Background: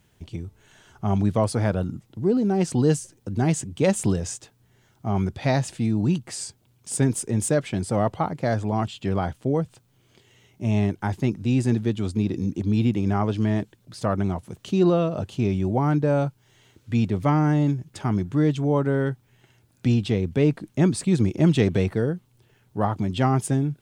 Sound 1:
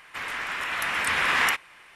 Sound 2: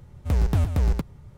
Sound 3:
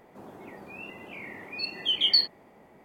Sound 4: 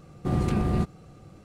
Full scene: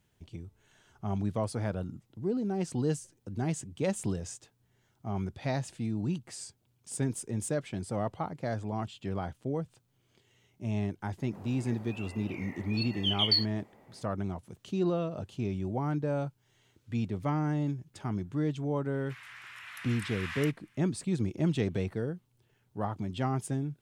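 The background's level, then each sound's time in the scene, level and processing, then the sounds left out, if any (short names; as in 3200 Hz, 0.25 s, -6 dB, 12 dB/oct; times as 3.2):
background -10 dB
11.18 add 3 -4.5 dB
18.95 add 1 -15.5 dB + HPF 1300 Hz
not used: 2, 4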